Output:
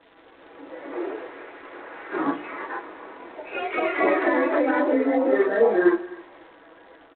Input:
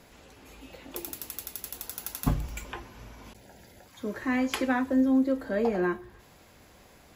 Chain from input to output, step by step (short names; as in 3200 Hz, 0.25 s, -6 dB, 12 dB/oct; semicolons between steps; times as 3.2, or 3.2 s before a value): phase scrambler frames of 0.1 s; Chebyshev band-pass 260–1900 Hz, order 4; comb 6.1 ms, depth 84%; AGC gain up to 7.5 dB; crackle 400/s -40 dBFS; echoes that change speed 0.176 s, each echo +2 st, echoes 3; 4.2–5.33 compressor 12:1, threshold -17 dBFS, peak gain reduction 6 dB; outdoor echo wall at 44 m, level -21 dB; G.726 32 kbps 8000 Hz